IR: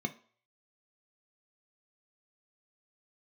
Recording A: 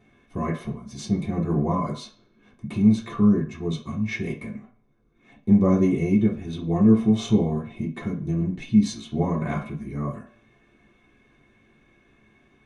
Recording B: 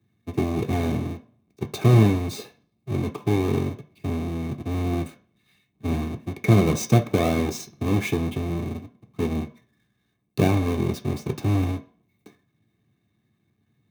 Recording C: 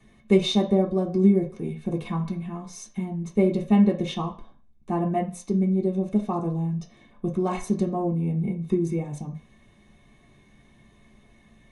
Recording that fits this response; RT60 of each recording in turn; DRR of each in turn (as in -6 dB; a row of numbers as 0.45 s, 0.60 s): B; 0.50 s, 0.50 s, 0.50 s; -7.5 dB, 5.5 dB, -2.0 dB